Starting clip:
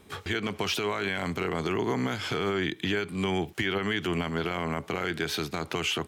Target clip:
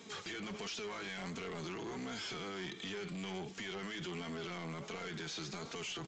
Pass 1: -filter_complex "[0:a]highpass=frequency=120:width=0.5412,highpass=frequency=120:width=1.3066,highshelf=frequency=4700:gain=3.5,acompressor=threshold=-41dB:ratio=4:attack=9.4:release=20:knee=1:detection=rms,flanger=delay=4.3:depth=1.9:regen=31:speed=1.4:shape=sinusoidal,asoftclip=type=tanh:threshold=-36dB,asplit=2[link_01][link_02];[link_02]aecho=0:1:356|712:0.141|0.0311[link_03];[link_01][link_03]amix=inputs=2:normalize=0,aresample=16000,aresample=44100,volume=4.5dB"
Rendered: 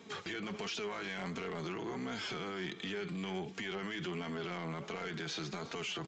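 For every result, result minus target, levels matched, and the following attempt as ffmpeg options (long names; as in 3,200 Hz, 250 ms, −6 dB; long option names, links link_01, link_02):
soft clipping: distortion −8 dB; 8,000 Hz band −4.0 dB
-filter_complex "[0:a]highpass=frequency=120:width=0.5412,highpass=frequency=120:width=1.3066,highshelf=frequency=4700:gain=3.5,acompressor=threshold=-41dB:ratio=4:attack=9.4:release=20:knee=1:detection=rms,flanger=delay=4.3:depth=1.9:regen=31:speed=1.4:shape=sinusoidal,asoftclip=type=tanh:threshold=-43dB,asplit=2[link_01][link_02];[link_02]aecho=0:1:356|712:0.141|0.0311[link_03];[link_01][link_03]amix=inputs=2:normalize=0,aresample=16000,aresample=44100,volume=4.5dB"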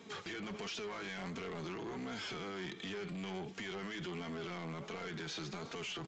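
8,000 Hz band −3.5 dB
-filter_complex "[0:a]highpass=frequency=120:width=0.5412,highpass=frequency=120:width=1.3066,highshelf=frequency=4700:gain=15,acompressor=threshold=-41dB:ratio=4:attack=9.4:release=20:knee=1:detection=rms,flanger=delay=4.3:depth=1.9:regen=31:speed=1.4:shape=sinusoidal,asoftclip=type=tanh:threshold=-43dB,asplit=2[link_01][link_02];[link_02]aecho=0:1:356|712:0.141|0.0311[link_03];[link_01][link_03]amix=inputs=2:normalize=0,aresample=16000,aresample=44100,volume=4.5dB"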